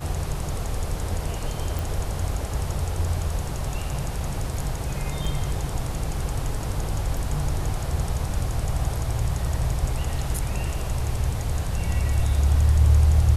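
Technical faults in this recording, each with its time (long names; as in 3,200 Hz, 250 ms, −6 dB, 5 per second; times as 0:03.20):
0:01.79: click
0:05.25: drop-out 3.6 ms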